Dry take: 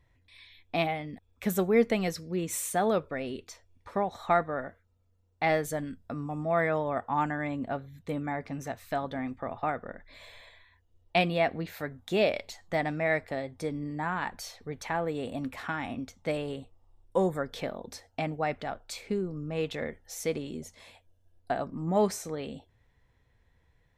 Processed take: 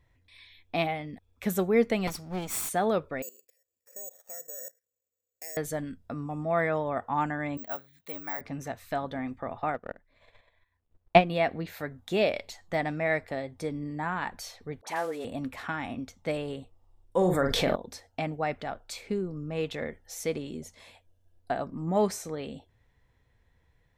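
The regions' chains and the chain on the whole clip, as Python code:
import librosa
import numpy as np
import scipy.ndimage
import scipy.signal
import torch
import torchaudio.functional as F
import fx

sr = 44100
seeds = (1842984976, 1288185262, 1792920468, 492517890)

y = fx.chain(x, sr, fx.lower_of_two(delay_ms=0.89),
    fx.high_shelf(hz=5700.0, db=5.0), at=(2.07, 2.69))
y = fx.chain(y, sr, fx.vowel_filter(vowel='e'),
    fx.level_steps(step_db=16),
    fx.resample_bad(factor=6, down='filtered', up='zero_stuff'), at=(3.22, 5.57))
y = fx.chain(y, sr, fx.highpass(hz=990.0, slope=6),
    fx.resample_bad(factor=2, down='filtered', up='zero_stuff'), at=(7.57, 8.41))
y = fx.chain(y, sr, fx.law_mismatch(coded='A'),
    fx.lowpass(hz=1300.0, slope=6),
    fx.transient(attack_db=12, sustain_db=-5), at=(9.74, 11.3))
y = fx.chain(y, sr, fx.cvsd(bps=64000),
    fx.highpass(hz=330.0, slope=12),
    fx.dispersion(late='highs', ms=57.0, hz=1000.0), at=(14.81, 15.25))
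y = fx.chain(y, sr, fx.doubler(ms=44.0, db=-8.5),
    fx.env_flatten(amount_pct=70), at=(17.17, 17.76))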